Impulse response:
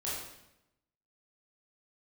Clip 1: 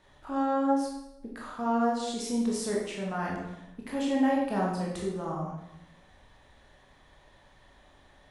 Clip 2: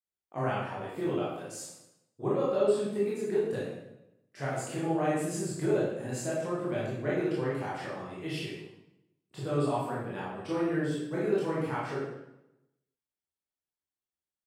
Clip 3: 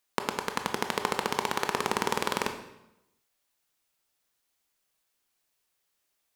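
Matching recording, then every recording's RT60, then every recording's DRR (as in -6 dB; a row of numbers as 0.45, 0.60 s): 2; 0.85, 0.85, 0.85 s; -3.5, -8.5, 5.5 dB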